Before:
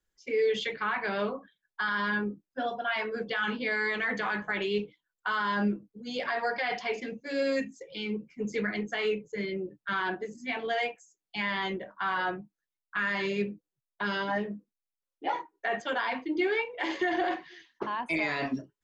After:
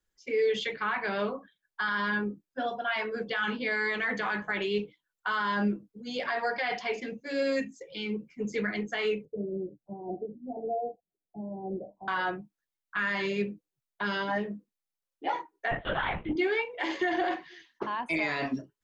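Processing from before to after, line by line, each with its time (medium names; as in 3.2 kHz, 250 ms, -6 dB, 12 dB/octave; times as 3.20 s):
9.25–12.08 s: steep low-pass 770 Hz 72 dB/octave
15.71–16.36 s: LPC vocoder at 8 kHz whisper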